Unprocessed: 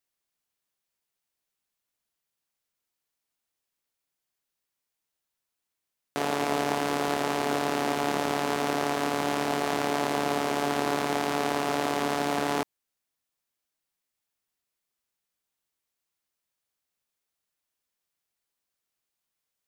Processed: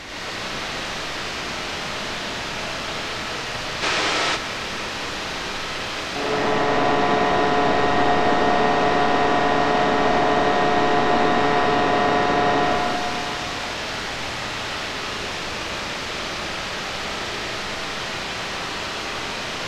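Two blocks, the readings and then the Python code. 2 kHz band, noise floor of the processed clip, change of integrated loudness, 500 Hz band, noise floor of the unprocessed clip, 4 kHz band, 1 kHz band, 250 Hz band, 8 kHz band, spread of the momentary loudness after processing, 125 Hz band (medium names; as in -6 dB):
+12.5 dB, -29 dBFS, +5.5 dB, +9.5 dB, -85 dBFS, +13.0 dB, +10.5 dB, +7.0 dB, +7.0 dB, 8 LU, +10.0 dB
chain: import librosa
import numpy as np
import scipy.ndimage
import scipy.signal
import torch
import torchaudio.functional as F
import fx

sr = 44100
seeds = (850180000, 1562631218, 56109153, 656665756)

y = fx.delta_mod(x, sr, bps=64000, step_db=-22.0)
y = fx.air_absorb(y, sr, metres=200.0)
y = fx.rev_freeverb(y, sr, rt60_s=2.9, hf_ratio=0.95, predelay_ms=50, drr_db=-7.5)
y = fx.spec_box(y, sr, start_s=3.83, length_s=0.53, low_hz=280.0, high_hz=9900.0, gain_db=7)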